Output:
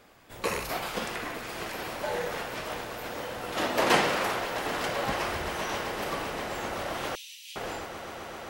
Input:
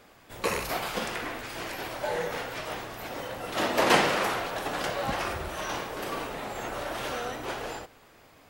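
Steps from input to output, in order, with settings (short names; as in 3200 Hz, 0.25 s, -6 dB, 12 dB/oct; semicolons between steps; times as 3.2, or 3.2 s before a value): swelling echo 0.13 s, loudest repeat 8, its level -17 dB; 3.82–4.95 crackle 360/s -38 dBFS; 7.15–7.56 steep high-pass 2600 Hz 48 dB/oct; gain -1.5 dB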